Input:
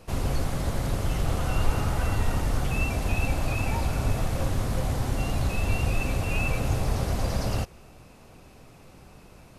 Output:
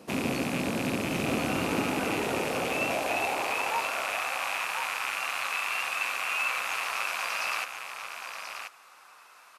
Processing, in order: rattling part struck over -36 dBFS, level -22 dBFS; high-pass sweep 240 Hz -> 1200 Hz, 1.66–3.98; echo 1.032 s -7 dB

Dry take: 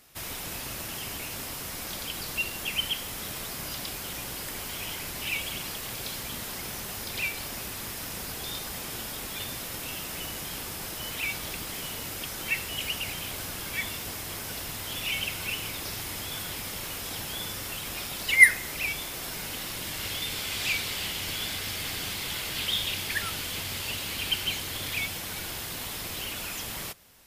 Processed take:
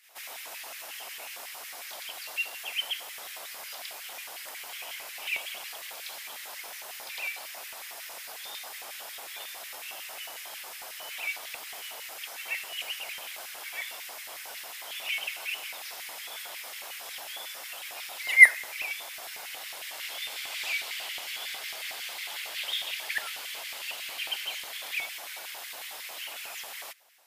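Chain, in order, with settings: reverse echo 0.125 s -17 dB; LFO high-pass square 5.5 Hz 690–2000 Hz; gain -6 dB

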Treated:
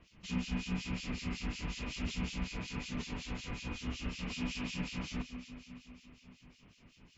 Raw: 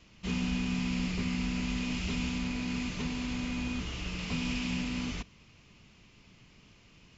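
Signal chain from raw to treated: echo with dull and thin repeats by turns 0.139 s, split 920 Hz, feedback 77%, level -9 dB; harmonic tremolo 5.4 Hz, depth 100%, crossover 2400 Hz

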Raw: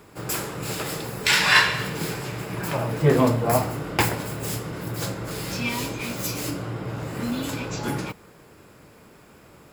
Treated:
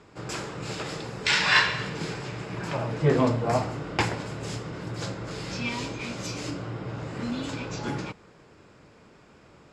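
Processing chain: LPF 6900 Hz 24 dB/oct; gain -3.5 dB

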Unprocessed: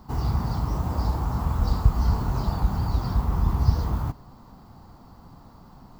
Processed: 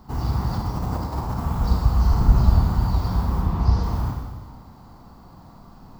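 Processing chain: 0.53–1.4 negative-ratio compressor -28 dBFS, ratio -1; 2.13–2.61 low shelf 150 Hz +11 dB; 3.41–3.82 LPF 3400 Hz -> 8400 Hz; Schroeder reverb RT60 1.4 s, combs from 33 ms, DRR 1 dB

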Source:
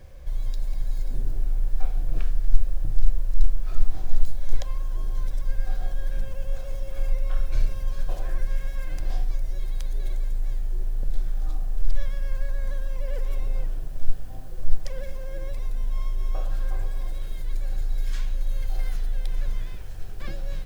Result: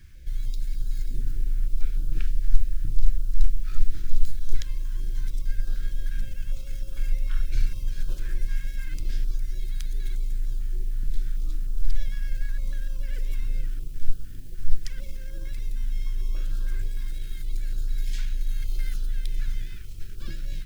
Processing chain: EQ curve 360 Hz 0 dB, 800 Hz -22 dB, 1400 Hz +3 dB; in parallel at -11 dB: crossover distortion -30 dBFS; on the sum: stepped notch 6.6 Hz 500–2000 Hz; gain -2.5 dB

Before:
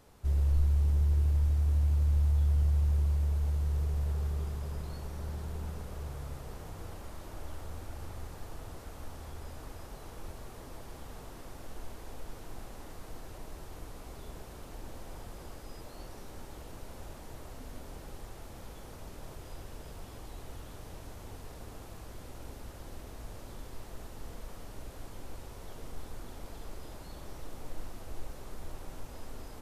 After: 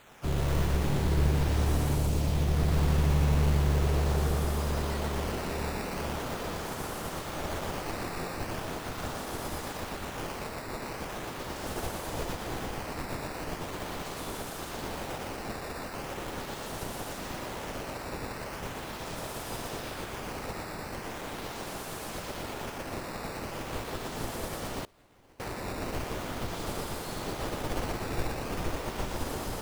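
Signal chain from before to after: spectral limiter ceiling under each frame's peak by 21 dB; 1.95–2.56 bell 1600 Hz -15 dB 0.88 oct; in parallel at +1.5 dB: compressor, threshold -38 dBFS, peak gain reduction 15.5 dB; on the sum: decimation with a swept rate 8×, swing 160% 0.4 Hz; on a send: split-band echo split 410 Hz, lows 0.481 s, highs 0.119 s, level -3 dB; 24.84–25.4 on the sum: flipped gate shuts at -27 dBFS, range -25 dB; gain -3 dB

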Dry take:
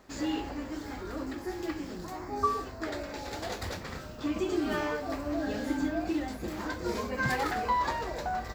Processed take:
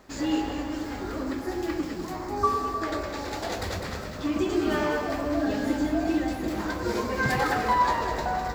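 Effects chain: echo with dull and thin repeats by turns 0.102 s, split 1400 Hz, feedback 70%, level -3.5 dB; gain +3.5 dB

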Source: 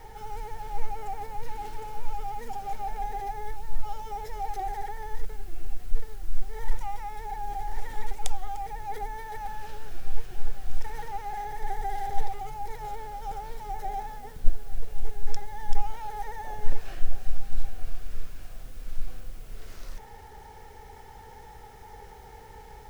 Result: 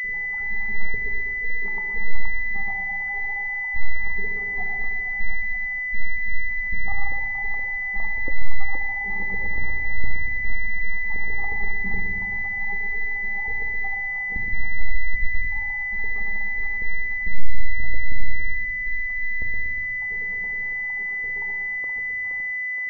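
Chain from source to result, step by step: random spectral dropouts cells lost 74%; monotone LPC vocoder at 8 kHz 200 Hz; limiter -19.5 dBFS, peak gain reduction 11 dB; shoebox room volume 2000 m³, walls mixed, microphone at 1.7 m; 14.95–15.45 negative-ratio compressor -19 dBFS, ratio -1; split-band echo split 790 Hz, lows 0.119 s, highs 0.471 s, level -5 dB; pulse-width modulation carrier 2000 Hz

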